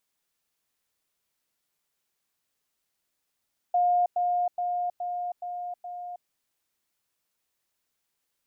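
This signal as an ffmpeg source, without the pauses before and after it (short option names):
-f lavfi -i "aevalsrc='pow(10,(-19.5-3*floor(t/0.42))/20)*sin(2*PI*711*t)*clip(min(mod(t,0.42),0.32-mod(t,0.42))/0.005,0,1)':d=2.52:s=44100"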